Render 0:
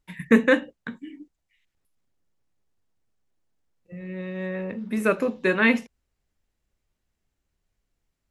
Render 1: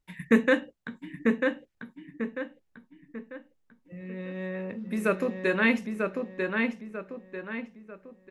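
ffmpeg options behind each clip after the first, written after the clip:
-filter_complex "[0:a]asplit=2[a][b];[b]adelay=944,lowpass=f=3.5k:p=1,volume=-3.5dB,asplit=2[c][d];[d]adelay=944,lowpass=f=3.5k:p=1,volume=0.4,asplit=2[e][f];[f]adelay=944,lowpass=f=3.5k:p=1,volume=0.4,asplit=2[g][h];[h]adelay=944,lowpass=f=3.5k:p=1,volume=0.4,asplit=2[i][j];[j]adelay=944,lowpass=f=3.5k:p=1,volume=0.4[k];[a][c][e][g][i][k]amix=inputs=6:normalize=0,volume=-4dB"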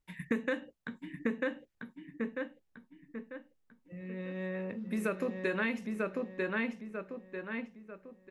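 -af "acompressor=threshold=-25dB:ratio=12,volume=-3dB"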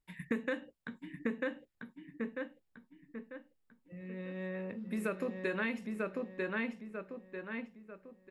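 -af "bandreject=f=6.1k:w=9.7,volume=-2.5dB"

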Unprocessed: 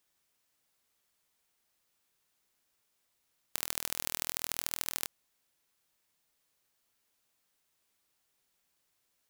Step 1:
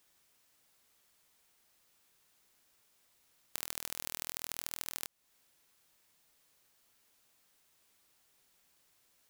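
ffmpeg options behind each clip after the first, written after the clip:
-af "acompressor=threshold=-44dB:ratio=2.5,volume=6.5dB"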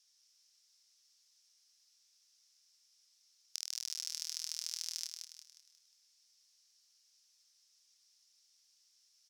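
-filter_complex "[0:a]bandpass=f=5.4k:t=q:w=5.4:csg=0,asplit=2[a][b];[b]aecho=0:1:179|358|537|716|895:0.531|0.223|0.0936|0.0393|0.0165[c];[a][c]amix=inputs=2:normalize=0,volume=11dB"

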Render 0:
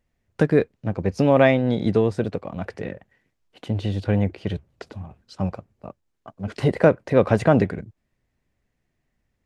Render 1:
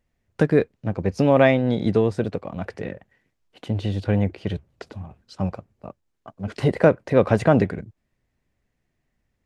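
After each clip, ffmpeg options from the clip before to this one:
-af anull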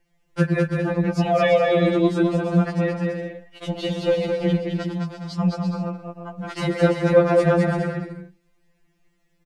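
-filter_complex "[0:a]alimiter=limit=-13dB:level=0:latency=1:release=351,asplit=2[a][b];[b]aecho=0:1:210|336|411.6|457|484.2:0.631|0.398|0.251|0.158|0.1[c];[a][c]amix=inputs=2:normalize=0,afftfilt=real='re*2.83*eq(mod(b,8),0)':imag='im*2.83*eq(mod(b,8),0)':win_size=2048:overlap=0.75,volume=8.5dB"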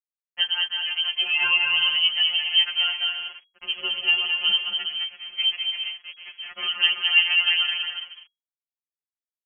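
-af "aeval=exprs='sgn(val(0))*max(abs(val(0))-0.01,0)':c=same,lowpass=f=2.8k:t=q:w=0.5098,lowpass=f=2.8k:t=q:w=0.6013,lowpass=f=2.8k:t=q:w=0.9,lowpass=f=2.8k:t=q:w=2.563,afreqshift=-3300,dynaudnorm=f=200:g=21:m=5dB,volume=-4dB"

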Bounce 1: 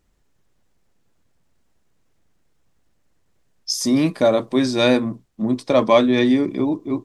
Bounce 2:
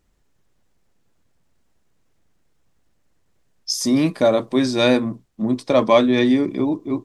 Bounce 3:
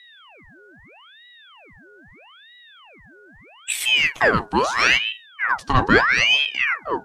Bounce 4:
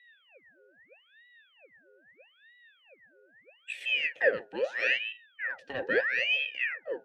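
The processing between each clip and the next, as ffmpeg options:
-af anull
-af "aeval=exprs='val(0)+0.00631*sin(2*PI*930*n/s)':c=same,aeval=exprs='val(0)*sin(2*PI*1700*n/s+1700*0.7/0.78*sin(2*PI*0.78*n/s))':c=same,volume=1.5dB"
-filter_complex "[0:a]asplit=3[a][b][c];[a]bandpass=f=530:t=q:w=8,volume=0dB[d];[b]bandpass=f=1.84k:t=q:w=8,volume=-6dB[e];[c]bandpass=f=2.48k:t=q:w=8,volume=-9dB[f];[d][e][f]amix=inputs=3:normalize=0"

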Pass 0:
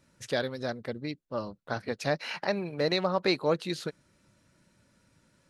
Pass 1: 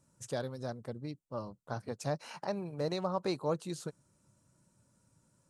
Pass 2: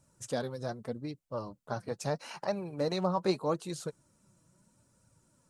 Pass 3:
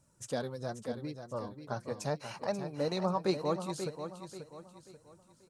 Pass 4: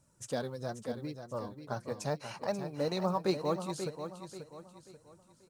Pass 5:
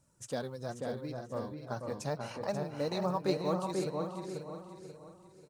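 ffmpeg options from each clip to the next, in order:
-af "equalizer=f=125:t=o:w=1:g=7,equalizer=f=1k:t=o:w=1:g=5,equalizer=f=2k:t=o:w=1:g=-9,equalizer=f=4k:t=o:w=1:g=-6,equalizer=f=8k:t=o:w=1:g=11,volume=-7.5dB"
-af "flanger=delay=1.2:depth=5.2:regen=45:speed=0.79:shape=triangular,volume=7dB"
-af "aecho=1:1:536|1072|1608|2144:0.355|0.131|0.0486|0.018,volume=-1.5dB"
-af "acrusher=bits=9:mode=log:mix=0:aa=0.000001"
-filter_complex "[0:a]asplit=2[a][b];[b]adelay=488,lowpass=f=1.8k:p=1,volume=-3dB,asplit=2[c][d];[d]adelay=488,lowpass=f=1.8k:p=1,volume=0.23,asplit=2[e][f];[f]adelay=488,lowpass=f=1.8k:p=1,volume=0.23[g];[a][c][e][g]amix=inputs=4:normalize=0,volume=-1.5dB"

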